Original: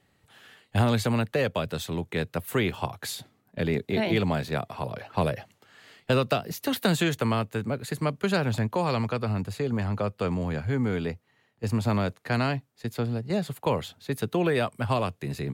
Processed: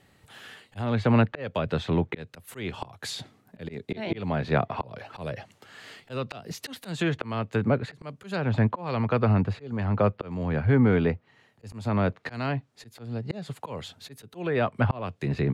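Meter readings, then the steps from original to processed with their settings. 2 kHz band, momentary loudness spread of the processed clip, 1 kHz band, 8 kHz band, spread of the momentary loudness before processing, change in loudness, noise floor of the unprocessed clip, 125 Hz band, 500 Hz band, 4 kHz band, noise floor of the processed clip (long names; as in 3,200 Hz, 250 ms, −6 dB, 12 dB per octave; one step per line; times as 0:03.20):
−1.5 dB, 19 LU, −1.5 dB, −6.5 dB, 9 LU, 0.0 dB, −68 dBFS, +1.0 dB, −1.0 dB, −5.0 dB, −63 dBFS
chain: volume swells 461 ms
treble cut that deepens with the level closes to 2,400 Hz, closed at −30 dBFS
level +6.5 dB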